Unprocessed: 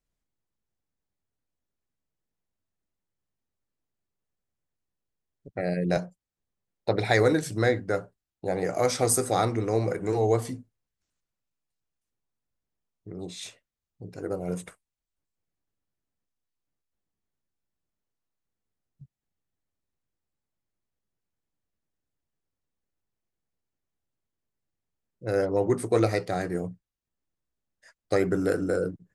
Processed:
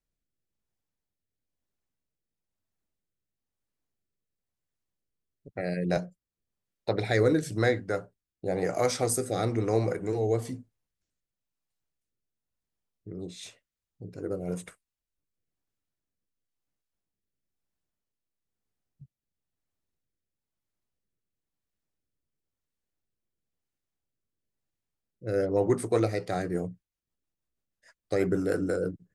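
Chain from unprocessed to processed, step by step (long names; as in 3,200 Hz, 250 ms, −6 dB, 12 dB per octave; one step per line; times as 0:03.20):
rotating-speaker cabinet horn 1 Hz, later 6.3 Hz, at 0:25.94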